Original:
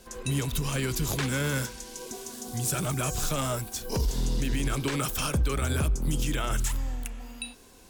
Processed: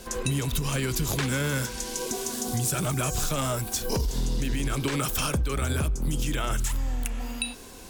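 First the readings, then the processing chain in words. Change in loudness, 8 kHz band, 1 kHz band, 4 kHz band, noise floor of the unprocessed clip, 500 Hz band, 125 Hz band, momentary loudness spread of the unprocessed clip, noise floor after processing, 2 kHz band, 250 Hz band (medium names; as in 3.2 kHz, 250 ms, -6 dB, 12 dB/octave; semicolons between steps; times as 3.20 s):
+1.5 dB, +2.5 dB, +2.0 dB, +2.5 dB, -52 dBFS, +2.0 dB, +1.0 dB, 11 LU, -43 dBFS, +1.5 dB, +1.5 dB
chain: compression 4:1, threshold -34 dBFS, peak gain reduction 11 dB; trim +9 dB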